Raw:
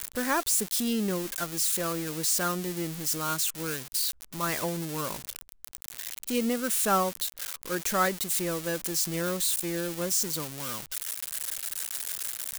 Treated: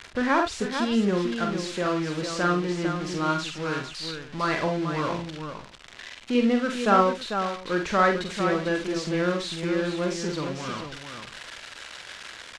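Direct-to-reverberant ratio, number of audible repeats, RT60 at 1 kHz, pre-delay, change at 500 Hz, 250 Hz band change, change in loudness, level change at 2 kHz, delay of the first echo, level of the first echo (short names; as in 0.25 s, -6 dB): none, 3, none, none, +6.5 dB, +6.5 dB, +2.5 dB, +5.5 dB, 45 ms, -5.0 dB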